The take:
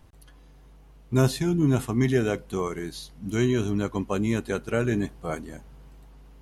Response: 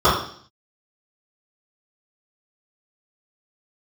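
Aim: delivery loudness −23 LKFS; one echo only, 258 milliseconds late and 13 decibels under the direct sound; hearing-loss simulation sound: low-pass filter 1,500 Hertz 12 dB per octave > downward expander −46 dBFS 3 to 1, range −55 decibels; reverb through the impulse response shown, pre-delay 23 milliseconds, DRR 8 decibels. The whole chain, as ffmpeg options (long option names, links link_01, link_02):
-filter_complex "[0:a]aecho=1:1:258:0.224,asplit=2[link_01][link_02];[1:a]atrim=start_sample=2205,adelay=23[link_03];[link_02][link_03]afir=irnorm=-1:irlink=0,volume=-33.5dB[link_04];[link_01][link_04]amix=inputs=2:normalize=0,lowpass=1500,agate=range=-55dB:threshold=-46dB:ratio=3,volume=2.5dB"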